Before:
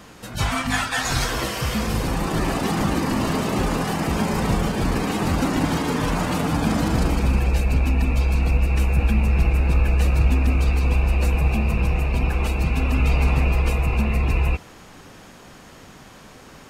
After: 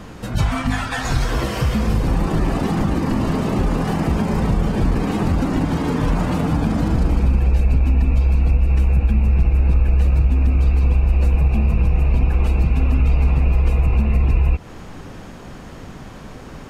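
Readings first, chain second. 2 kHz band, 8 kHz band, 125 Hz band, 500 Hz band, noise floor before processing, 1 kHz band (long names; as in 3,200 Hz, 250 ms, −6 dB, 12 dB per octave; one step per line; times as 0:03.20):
−3.5 dB, −6.5 dB, +4.0 dB, +0.5 dB, −45 dBFS, −1.0 dB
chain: downward compressor, threshold −25 dBFS, peak gain reduction 12.5 dB
spectral tilt −2 dB per octave
level +5 dB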